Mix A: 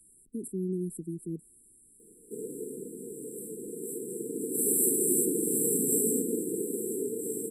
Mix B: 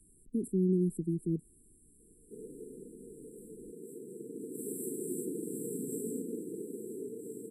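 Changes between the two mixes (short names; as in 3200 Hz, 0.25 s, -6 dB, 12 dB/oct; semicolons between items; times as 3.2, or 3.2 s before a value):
background -11.0 dB; master: add tilt -2 dB/oct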